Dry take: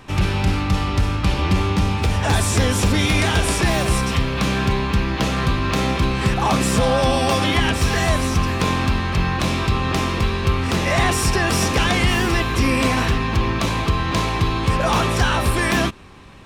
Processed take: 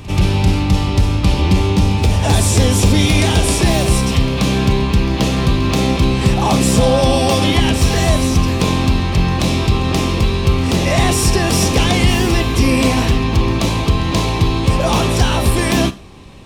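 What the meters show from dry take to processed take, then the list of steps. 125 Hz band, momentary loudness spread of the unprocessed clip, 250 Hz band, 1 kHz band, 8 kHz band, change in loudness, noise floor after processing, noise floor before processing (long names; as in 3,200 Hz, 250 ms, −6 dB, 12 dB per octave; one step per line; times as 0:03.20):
+5.5 dB, 3 LU, +6.0 dB, +1.0 dB, +5.5 dB, +4.5 dB, −19 dBFS, −24 dBFS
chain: parametric band 1,500 Hz −10 dB 1.1 octaves
echo ahead of the sound 131 ms −18 dB
four-comb reverb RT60 0.35 s, combs from 27 ms, DRR 14.5 dB
level +5.5 dB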